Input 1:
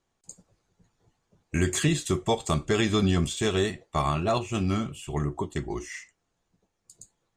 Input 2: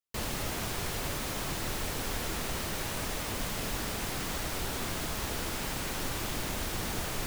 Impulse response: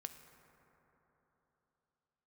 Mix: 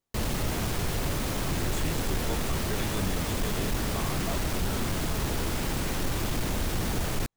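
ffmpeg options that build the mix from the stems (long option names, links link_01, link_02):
-filter_complex "[0:a]volume=-11dB[link_01];[1:a]lowshelf=frequency=440:gain=7.5,volume=2.5dB[link_02];[link_01][link_02]amix=inputs=2:normalize=0,asoftclip=type=tanh:threshold=-20dB"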